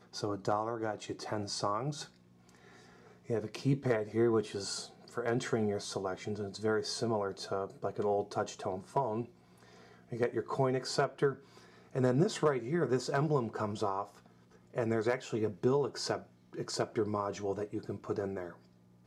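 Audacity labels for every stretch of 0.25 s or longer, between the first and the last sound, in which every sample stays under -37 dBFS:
2.030000	3.300000	silence
4.840000	5.170000	silence
9.230000	10.120000	silence
11.330000	11.950000	silence
14.040000	14.760000	silence
16.180000	16.580000	silence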